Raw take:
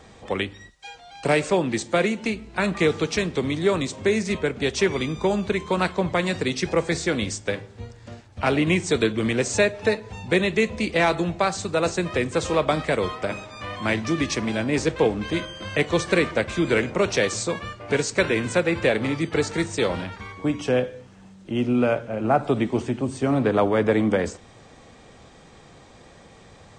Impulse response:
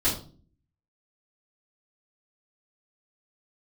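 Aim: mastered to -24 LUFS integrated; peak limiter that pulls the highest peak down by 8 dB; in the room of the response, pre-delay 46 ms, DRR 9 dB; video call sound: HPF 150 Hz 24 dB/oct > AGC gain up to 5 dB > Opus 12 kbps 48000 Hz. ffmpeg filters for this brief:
-filter_complex "[0:a]alimiter=limit=-14.5dB:level=0:latency=1,asplit=2[a][b];[1:a]atrim=start_sample=2205,adelay=46[c];[b][c]afir=irnorm=-1:irlink=0,volume=-20dB[d];[a][d]amix=inputs=2:normalize=0,highpass=f=150:w=0.5412,highpass=f=150:w=1.3066,dynaudnorm=m=5dB,volume=-0.5dB" -ar 48000 -c:a libopus -b:a 12k

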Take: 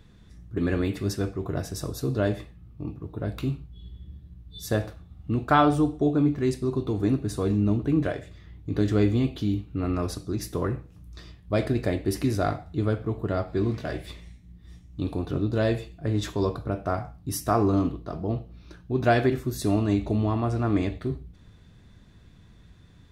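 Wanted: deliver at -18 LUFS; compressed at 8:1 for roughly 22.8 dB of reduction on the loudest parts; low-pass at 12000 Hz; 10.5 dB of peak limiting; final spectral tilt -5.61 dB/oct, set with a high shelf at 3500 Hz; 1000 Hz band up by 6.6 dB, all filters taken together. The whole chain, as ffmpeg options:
-af "lowpass=12k,equalizer=f=1k:t=o:g=9,highshelf=f=3.5k:g=5,acompressor=threshold=-33dB:ratio=8,volume=22.5dB,alimiter=limit=-6dB:level=0:latency=1"

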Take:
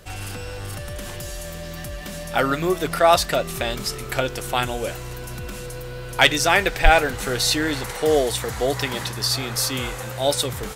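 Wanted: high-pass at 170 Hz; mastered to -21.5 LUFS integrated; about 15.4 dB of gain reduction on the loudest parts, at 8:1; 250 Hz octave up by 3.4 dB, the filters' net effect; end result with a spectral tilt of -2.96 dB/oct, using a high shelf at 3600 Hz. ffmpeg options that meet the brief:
-af "highpass=170,equalizer=f=250:t=o:g=5.5,highshelf=f=3.6k:g=6.5,acompressor=threshold=-25dB:ratio=8,volume=7.5dB"

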